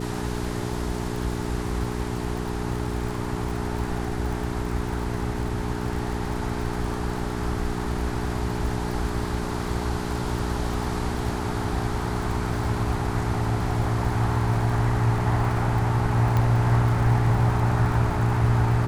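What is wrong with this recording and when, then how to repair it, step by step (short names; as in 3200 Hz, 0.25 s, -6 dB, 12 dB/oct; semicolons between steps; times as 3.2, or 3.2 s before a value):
crackle 50/s -31 dBFS
hum 60 Hz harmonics 7 -30 dBFS
16.37 pop -13 dBFS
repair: de-click; de-hum 60 Hz, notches 7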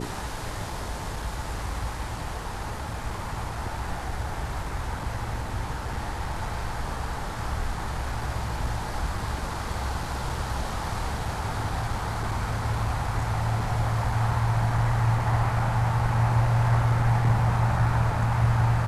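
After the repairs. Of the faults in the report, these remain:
none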